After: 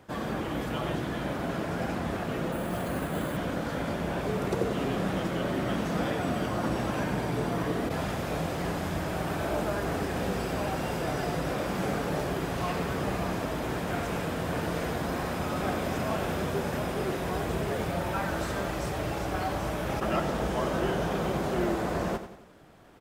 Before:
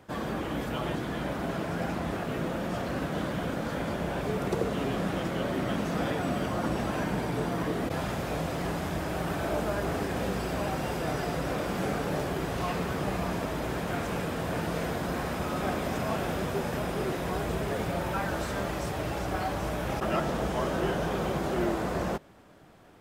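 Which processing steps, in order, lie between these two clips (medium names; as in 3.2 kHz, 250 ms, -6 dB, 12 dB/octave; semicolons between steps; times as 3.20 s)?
on a send: feedback delay 92 ms, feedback 44%, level -11 dB; 2.52–3.37 s: on the sum: careless resampling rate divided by 4×, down filtered, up hold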